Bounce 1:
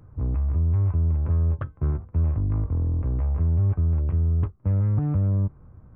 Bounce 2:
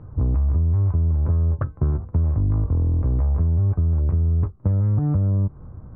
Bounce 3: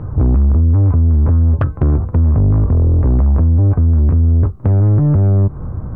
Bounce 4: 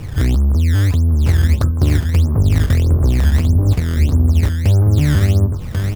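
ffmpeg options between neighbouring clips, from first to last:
ffmpeg -i in.wav -af "lowpass=1400,acompressor=threshold=-26dB:ratio=6,volume=9dB" out.wav
ffmpeg -i in.wav -filter_complex "[0:a]asplit=2[link_01][link_02];[link_02]alimiter=limit=-20.5dB:level=0:latency=1:release=81,volume=1.5dB[link_03];[link_01][link_03]amix=inputs=2:normalize=0,asoftclip=type=tanh:threshold=-16.5dB,volume=8.5dB" out.wav
ffmpeg -i in.wav -filter_complex "[0:a]asplit=2[link_01][link_02];[link_02]aecho=0:1:1090:0.531[link_03];[link_01][link_03]amix=inputs=2:normalize=0,acrusher=samples=15:mix=1:aa=0.000001:lfo=1:lforange=24:lforate=1.6,volume=-2.5dB" out.wav

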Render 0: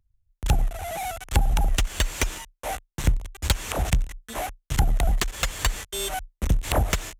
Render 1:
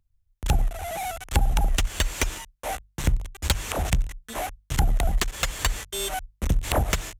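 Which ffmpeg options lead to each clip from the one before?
ffmpeg -i in.wav -af "bandreject=frequency=50:width_type=h:width=6,bandreject=frequency=100:width_type=h:width=6,bandreject=frequency=150:width_type=h:width=6" out.wav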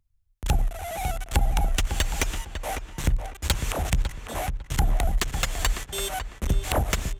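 ffmpeg -i in.wav -filter_complex "[0:a]asplit=2[link_01][link_02];[link_02]adelay=551,lowpass=frequency=2200:poles=1,volume=-7.5dB,asplit=2[link_03][link_04];[link_04]adelay=551,lowpass=frequency=2200:poles=1,volume=0.25,asplit=2[link_05][link_06];[link_06]adelay=551,lowpass=frequency=2200:poles=1,volume=0.25[link_07];[link_01][link_03][link_05][link_07]amix=inputs=4:normalize=0,volume=-1dB" out.wav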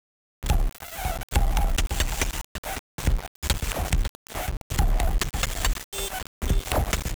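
ffmpeg -i in.wav -af "aeval=exprs='val(0)*gte(abs(val(0)),0.0398)':channel_layout=same" out.wav

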